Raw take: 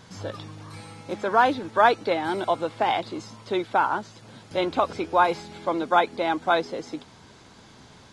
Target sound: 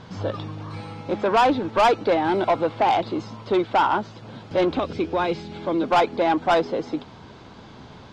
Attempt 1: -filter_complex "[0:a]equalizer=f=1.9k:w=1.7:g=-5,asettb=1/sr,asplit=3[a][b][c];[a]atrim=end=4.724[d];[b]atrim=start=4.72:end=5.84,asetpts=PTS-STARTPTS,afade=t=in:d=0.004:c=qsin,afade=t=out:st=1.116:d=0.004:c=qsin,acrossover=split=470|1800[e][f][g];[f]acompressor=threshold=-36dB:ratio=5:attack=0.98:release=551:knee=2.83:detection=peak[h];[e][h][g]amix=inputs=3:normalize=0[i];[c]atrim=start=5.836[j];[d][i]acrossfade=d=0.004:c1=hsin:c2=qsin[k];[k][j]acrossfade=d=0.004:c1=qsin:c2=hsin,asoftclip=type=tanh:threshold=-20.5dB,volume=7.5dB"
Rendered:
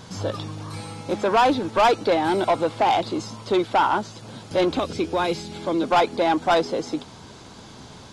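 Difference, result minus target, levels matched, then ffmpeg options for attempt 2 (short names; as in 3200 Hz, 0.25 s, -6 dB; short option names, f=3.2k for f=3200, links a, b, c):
4000 Hz band +2.5 dB
-filter_complex "[0:a]lowpass=3.2k,equalizer=f=1.9k:w=1.7:g=-5,asettb=1/sr,asplit=3[a][b][c];[a]atrim=end=4.724[d];[b]atrim=start=4.72:end=5.84,asetpts=PTS-STARTPTS,afade=t=in:d=0.004:c=qsin,afade=t=out:st=1.116:d=0.004:c=qsin,acrossover=split=470|1800[e][f][g];[f]acompressor=threshold=-36dB:ratio=5:attack=0.98:release=551:knee=2.83:detection=peak[h];[e][h][g]amix=inputs=3:normalize=0[i];[c]atrim=start=5.836[j];[d][i]acrossfade=d=0.004:c1=hsin:c2=qsin[k];[k][j]acrossfade=d=0.004:c1=qsin:c2=hsin,asoftclip=type=tanh:threshold=-20.5dB,volume=7.5dB"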